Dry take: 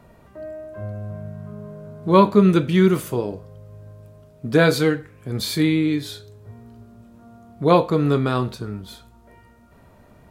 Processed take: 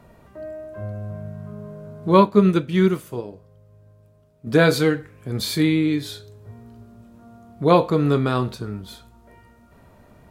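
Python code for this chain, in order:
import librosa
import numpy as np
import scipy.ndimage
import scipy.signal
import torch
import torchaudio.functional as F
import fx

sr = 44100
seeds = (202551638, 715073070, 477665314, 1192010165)

y = fx.upward_expand(x, sr, threshold_db=-29.0, expansion=1.5, at=(2.17, 4.47))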